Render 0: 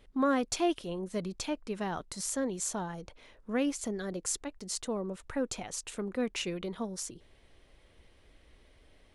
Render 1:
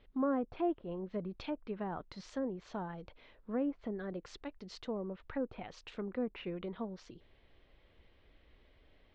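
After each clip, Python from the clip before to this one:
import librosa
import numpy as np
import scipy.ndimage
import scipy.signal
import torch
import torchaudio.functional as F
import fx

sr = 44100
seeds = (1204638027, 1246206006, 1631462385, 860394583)

y = scipy.signal.sosfilt(scipy.signal.butter(4, 4100.0, 'lowpass', fs=sr, output='sos'), x)
y = fx.env_lowpass_down(y, sr, base_hz=950.0, full_db=-29.5)
y = y * 10.0 ** (-4.0 / 20.0)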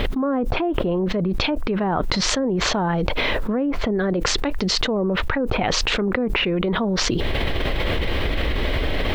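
y = fx.env_flatten(x, sr, amount_pct=100)
y = y * 10.0 ** (8.5 / 20.0)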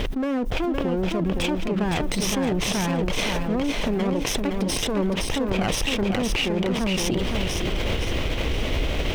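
y = fx.lower_of_two(x, sr, delay_ms=0.34)
y = fx.echo_feedback(y, sr, ms=514, feedback_pct=38, wet_db=-4.5)
y = y * 10.0 ** (-3.0 / 20.0)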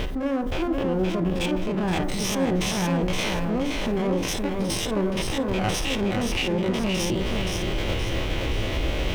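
y = fx.spec_steps(x, sr, hold_ms=50)
y = fx.rev_fdn(y, sr, rt60_s=0.76, lf_ratio=0.85, hf_ratio=0.25, size_ms=54.0, drr_db=7.0)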